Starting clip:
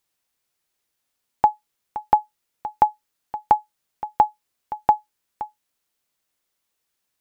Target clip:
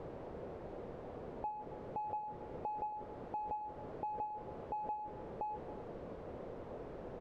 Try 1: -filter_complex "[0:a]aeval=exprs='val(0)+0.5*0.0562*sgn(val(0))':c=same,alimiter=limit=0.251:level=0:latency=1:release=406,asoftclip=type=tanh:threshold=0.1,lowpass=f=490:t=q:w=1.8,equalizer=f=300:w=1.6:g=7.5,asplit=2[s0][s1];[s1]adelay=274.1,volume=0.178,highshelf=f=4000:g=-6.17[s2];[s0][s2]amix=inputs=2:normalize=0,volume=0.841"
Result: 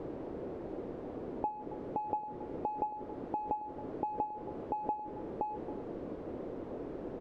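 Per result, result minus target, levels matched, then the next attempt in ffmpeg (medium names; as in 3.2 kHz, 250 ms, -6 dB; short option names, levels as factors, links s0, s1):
250 Hz band +4.5 dB; saturation: distortion -6 dB
-filter_complex "[0:a]aeval=exprs='val(0)+0.5*0.0562*sgn(val(0))':c=same,alimiter=limit=0.251:level=0:latency=1:release=406,asoftclip=type=tanh:threshold=0.1,lowpass=f=490:t=q:w=1.8,equalizer=f=300:w=1.6:g=-3,asplit=2[s0][s1];[s1]adelay=274.1,volume=0.178,highshelf=f=4000:g=-6.17[s2];[s0][s2]amix=inputs=2:normalize=0,volume=0.841"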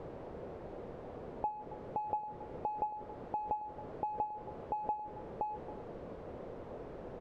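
saturation: distortion -6 dB
-filter_complex "[0:a]aeval=exprs='val(0)+0.5*0.0562*sgn(val(0))':c=same,alimiter=limit=0.251:level=0:latency=1:release=406,asoftclip=type=tanh:threshold=0.0422,lowpass=f=490:t=q:w=1.8,equalizer=f=300:w=1.6:g=-3,asplit=2[s0][s1];[s1]adelay=274.1,volume=0.178,highshelf=f=4000:g=-6.17[s2];[s0][s2]amix=inputs=2:normalize=0,volume=0.841"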